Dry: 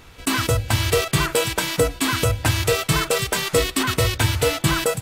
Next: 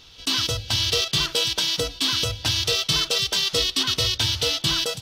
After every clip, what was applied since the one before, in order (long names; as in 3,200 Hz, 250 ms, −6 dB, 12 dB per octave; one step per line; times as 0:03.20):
flat-topped bell 4,200 Hz +15.5 dB 1.3 octaves
level −9 dB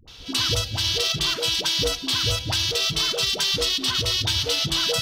brickwall limiter −16 dBFS, peak gain reduction 8 dB
all-pass dispersion highs, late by 78 ms, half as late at 500 Hz
level +4.5 dB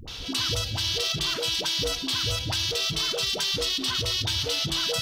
envelope flattener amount 50%
level −5 dB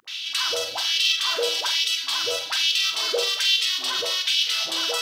auto-filter high-pass sine 1.2 Hz 490–2,800 Hz
flutter between parallel walls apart 7.9 metres, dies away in 0.36 s
level +1 dB